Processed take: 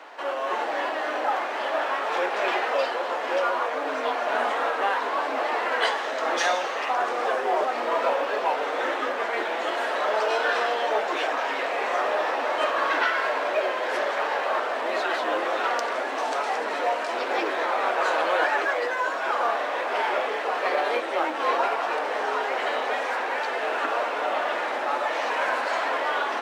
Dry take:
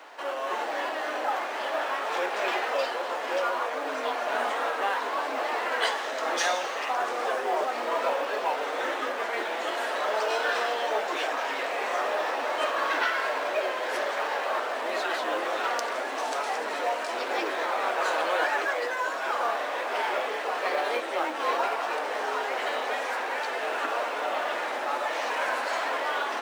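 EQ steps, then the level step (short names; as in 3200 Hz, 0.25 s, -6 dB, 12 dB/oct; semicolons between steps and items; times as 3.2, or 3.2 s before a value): LPF 4000 Hz 6 dB/oct; +3.5 dB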